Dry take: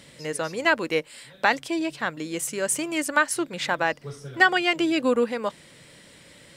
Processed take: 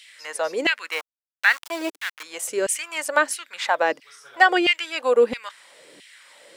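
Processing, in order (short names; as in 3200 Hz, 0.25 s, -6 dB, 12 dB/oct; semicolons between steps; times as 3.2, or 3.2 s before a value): 0.92–2.23 sample gate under -31 dBFS; LFO high-pass saw down 1.5 Hz 270–2800 Hz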